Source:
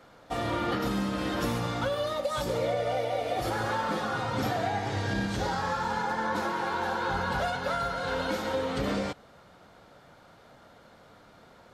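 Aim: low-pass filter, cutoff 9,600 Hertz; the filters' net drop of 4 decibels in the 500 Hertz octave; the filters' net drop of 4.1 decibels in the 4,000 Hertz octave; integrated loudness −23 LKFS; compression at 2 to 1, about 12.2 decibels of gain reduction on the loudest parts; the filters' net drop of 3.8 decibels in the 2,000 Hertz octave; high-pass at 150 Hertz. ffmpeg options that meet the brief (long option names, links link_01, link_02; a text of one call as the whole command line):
ffmpeg -i in.wav -af "highpass=150,lowpass=9600,equalizer=frequency=500:width_type=o:gain=-4.5,equalizer=frequency=2000:width_type=o:gain=-4.5,equalizer=frequency=4000:width_type=o:gain=-3.5,acompressor=threshold=-52dB:ratio=2,volume=22dB" out.wav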